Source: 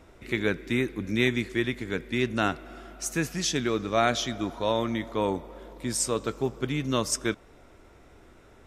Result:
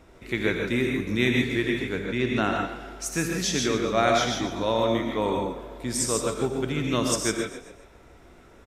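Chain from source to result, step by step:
0:01.89–0:02.56: high-shelf EQ 4,600 Hz −7 dB
echo with shifted repeats 133 ms, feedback 43%, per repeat +34 Hz, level −12 dB
reverb whose tail is shaped and stops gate 180 ms rising, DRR 1.5 dB

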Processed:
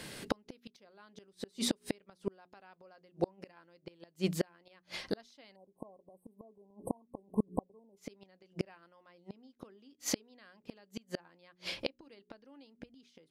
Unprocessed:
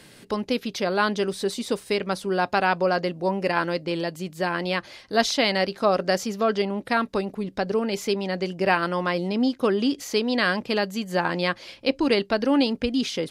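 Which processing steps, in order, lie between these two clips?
mains-hum notches 60/120/180/240/300/360/420 Hz
gate with flip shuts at −20 dBFS, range −39 dB
time-frequency box erased 0:05.56–0:07.97, 1,100–8,000 Hz
level +3 dB

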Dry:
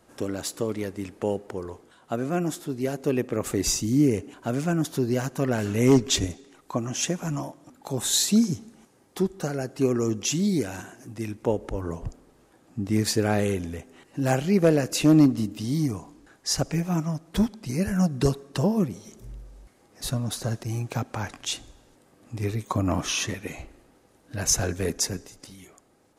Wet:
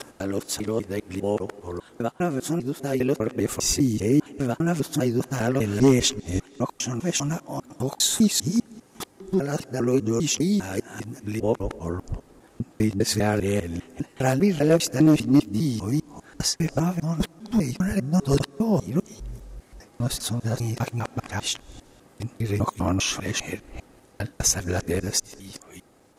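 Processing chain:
reversed piece by piece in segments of 200 ms
in parallel at −2 dB: downward compressor, threshold −34 dBFS, peak gain reduction 19.5 dB

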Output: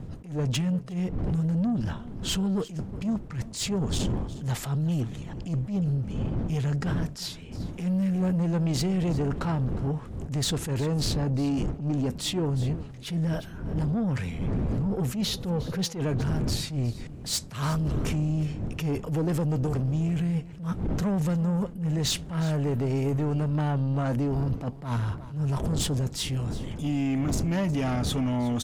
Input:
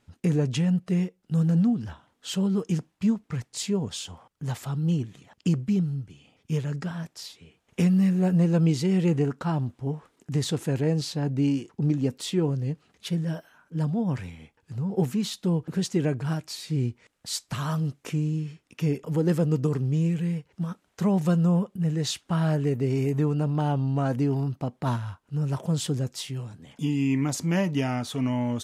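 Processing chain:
wind on the microphone 170 Hz −36 dBFS
0:15.21–0:16.02: thirty-one-band graphic EQ 315 Hz −6 dB, 500 Hz +8 dB, 8,000 Hz −11 dB
in parallel at +2 dB: compressor whose output falls as the input rises −29 dBFS, ratio −1
on the sum: soft clipping −18.5 dBFS, distortion −14 dB
on a send: single-tap delay 360 ms −17.5 dB
on the sum: level that may rise only so fast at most 130 dB per second
level −3 dB

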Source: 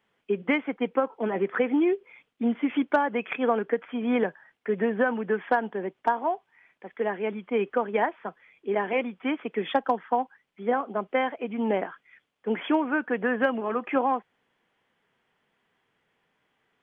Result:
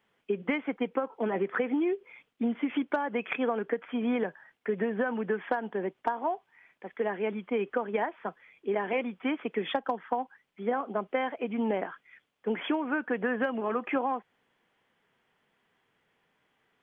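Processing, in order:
downward compressor, threshold −25 dBFS, peak gain reduction 8.5 dB

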